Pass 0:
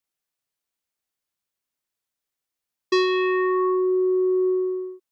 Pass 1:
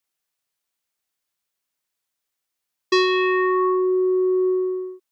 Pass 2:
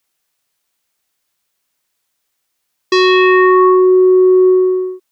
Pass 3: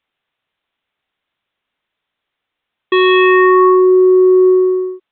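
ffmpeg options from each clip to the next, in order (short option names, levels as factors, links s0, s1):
-af "lowshelf=f=500:g=-5,volume=1.68"
-af "alimiter=level_in=3.98:limit=0.891:release=50:level=0:latency=1,volume=0.891"
-af "aresample=8000,aresample=44100"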